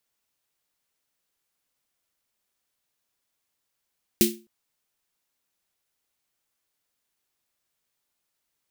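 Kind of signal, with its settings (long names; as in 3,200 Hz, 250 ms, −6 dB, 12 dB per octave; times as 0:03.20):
synth snare length 0.26 s, tones 220 Hz, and 350 Hz, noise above 2,300 Hz, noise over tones −1 dB, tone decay 0.32 s, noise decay 0.25 s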